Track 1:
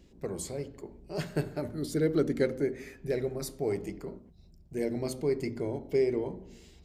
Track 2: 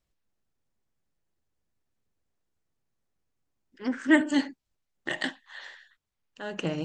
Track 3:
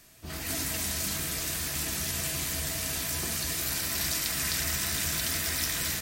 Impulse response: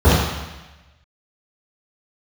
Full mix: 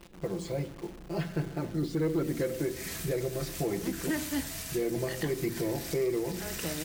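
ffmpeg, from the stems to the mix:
-filter_complex "[0:a]aecho=1:1:5.9:0.94,asoftclip=type=tanh:threshold=-16.5dB,volume=2.5dB,asplit=2[link_01][link_02];[1:a]volume=-6dB[link_03];[2:a]alimiter=limit=-20.5dB:level=0:latency=1:release=139,adelay=1800,volume=-6dB[link_04];[link_02]apad=whole_len=344503[link_05];[link_04][link_05]sidechaincompress=threshold=-33dB:ratio=5:attack=27:release=304[link_06];[link_01][link_03]amix=inputs=2:normalize=0,lowpass=3600,alimiter=limit=-22.5dB:level=0:latency=1:release=231,volume=0dB[link_07];[link_06][link_07]amix=inputs=2:normalize=0,acrusher=bits=9:dc=4:mix=0:aa=0.000001"

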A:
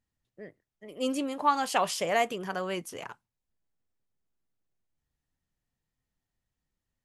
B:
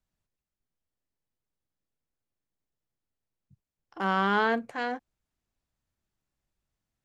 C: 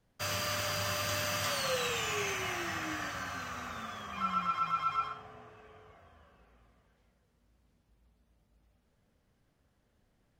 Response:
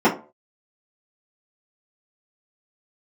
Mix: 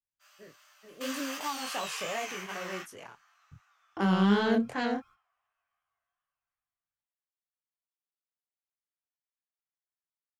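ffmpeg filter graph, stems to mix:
-filter_complex "[0:a]agate=range=-33dB:threshold=-46dB:ratio=3:detection=peak,volume=-4dB,asplit=2[link_01][link_02];[1:a]equalizer=frequency=93:width_type=o:width=1.1:gain=8.5,acontrast=70,agate=range=-30dB:threshold=-48dB:ratio=16:detection=peak,volume=1.5dB[link_03];[2:a]highpass=frequency=840:width=0.5412,highpass=frequency=840:width=1.3066,asplit=2[link_04][link_05];[link_05]adelay=11.5,afreqshift=-0.26[link_06];[link_04][link_06]amix=inputs=2:normalize=1,volume=2.5dB[link_07];[link_02]apad=whole_len=459100[link_08];[link_07][link_08]sidechaingate=range=-22dB:threshold=-40dB:ratio=16:detection=peak[link_09];[link_01][link_03][link_09]amix=inputs=3:normalize=0,flanger=delay=19.5:depth=7.2:speed=2.7,acrossover=split=460|3000[link_10][link_11][link_12];[link_11]acompressor=threshold=-33dB:ratio=6[link_13];[link_10][link_13][link_12]amix=inputs=3:normalize=0"

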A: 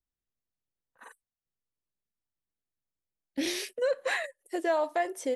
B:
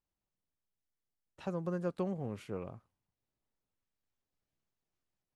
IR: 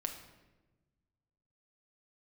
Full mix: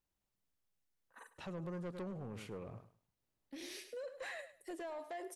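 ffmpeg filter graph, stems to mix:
-filter_complex "[0:a]acompressor=threshold=-29dB:ratio=6,asoftclip=type=tanh:threshold=-25dB,adelay=150,volume=-6dB,asplit=2[link_01][link_02];[link_02]volume=-16dB[link_03];[1:a]volume=31.5dB,asoftclip=hard,volume=-31.5dB,volume=1.5dB,asplit=3[link_04][link_05][link_06];[link_05]volume=-14.5dB[link_07];[link_06]apad=whole_len=242807[link_08];[link_01][link_08]sidechaincompress=threshold=-52dB:ratio=8:attack=16:release=1360[link_09];[link_03][link_07]amix=inputs=2:normalize=0,aecho=0:1:103|206|309:1|0.21|0.0441[link_10];[link_09][link_04][link_10]amix=inputs=3:normalize=0,asoftclip=type=tanh:threshold=-31dB,alimiter=level_in=15dB:limit=-24dB:level=0:latency=1:release=20,volume=-15dB"

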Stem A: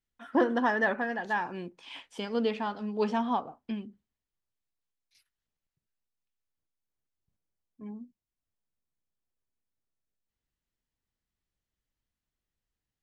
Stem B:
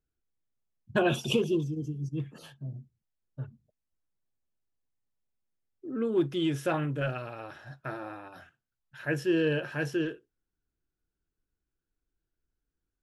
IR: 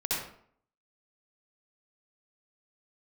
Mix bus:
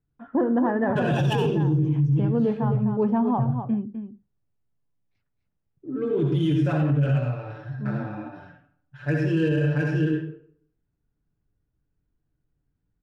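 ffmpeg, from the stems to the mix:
-filter_complex "[0:a]lowpass=1100,volume=2.5dB,asplit=2[link_01][link_02];[link_02]volume=-9dB[link_03];[1:a]aecho=1:1:6.9:0.81,adynamicsmooth=sensitivity=6.5:basefreq=3600,volume=-7dB,asplit=2[link_04][link_05];[link_05]volume=-3.5dB[link_06];[2:a]atrim=start_sample=2205[link_07];[link_06][link_07]afir=irnorm=-1:irlink=0[link_08];[link_03]aecho=0:1:254:1[link_09];[link_01][link_04][link_08][link_09]amix=inputs=4:normalize=0,equalizer=frequency=100:width_type=o:width=3:gain=11.5,alimiter=limit=-15dB:level=0:latency=1:release=20"

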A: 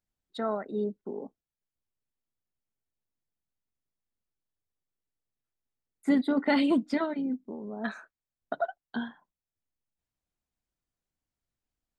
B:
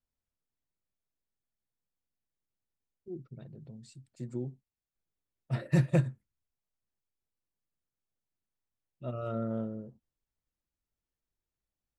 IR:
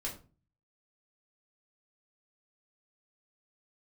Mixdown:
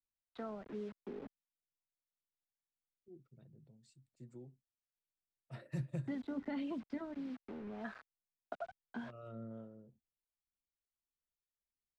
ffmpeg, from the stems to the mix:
-filter_complex "[0:a]acrusher=bits=6:mix=0:aa=0.000001,lowpass=1900,volume=-5dB[link_01];[1:a]volume=-12dB[link_02];[link_01][link_02]amix=inputs=2:normalize=0,acrossover=split=180|3000[link_03][link_04][link_05];[link_04]acompressor=threshold=-41dB:ratio=3[link_06];[link_03][link_06][link_05]amix=inputs=3:normalize=0,acrossover=split=430[link_07][link_08];[link_07]aeval=exprs='val(0)*(1-0.5/2+0.5/2*cos(2*PI*1.7*n/s))':channel_layout=same[link_09];[link_08]aeval=exprs='val(0)*(1-0.5/2-0.5/2*cos(2*PI*1.7*n/s))':channel_layout=same[link_10];[link_09][link_10]amix=inputs=2:normalize=0"

